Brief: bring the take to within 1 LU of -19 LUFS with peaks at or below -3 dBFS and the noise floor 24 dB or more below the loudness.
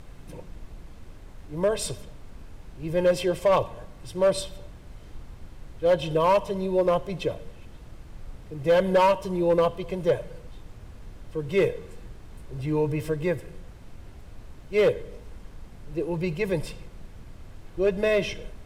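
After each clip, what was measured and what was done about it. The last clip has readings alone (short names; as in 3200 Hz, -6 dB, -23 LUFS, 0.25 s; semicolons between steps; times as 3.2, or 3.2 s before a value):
clipped 0.6%; flat tops at -14.5 dBFS; noise floor -46 dBFS; noise floor target -50 dBFS; loudness -25.5 LUFS; peak -14.5 dBFS; loudness target -19.0 LUFS
-> clip repair -14.5 dBFS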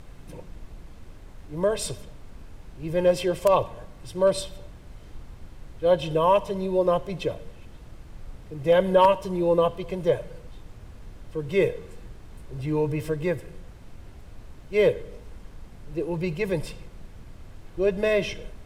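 clipped 0.0%; noise floor -46 dBFS; noise floor target -49 dBFS
-> noise print and reduce 6 dB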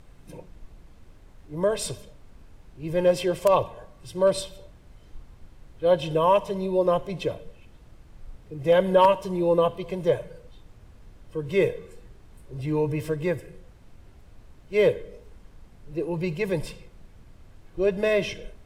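noise floor -52 dBFS; loudness -25.0 LUFS; peak -5.5 dBFS; loudness target -19.0 LUFS
-> gain +6 dB; limiter -3 dBFS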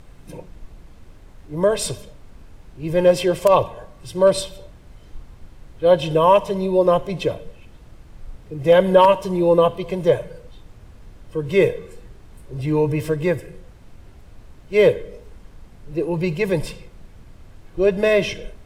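loudness -19.0 LUFS; peak -3.0 dBFS; noise floor -46 dBFS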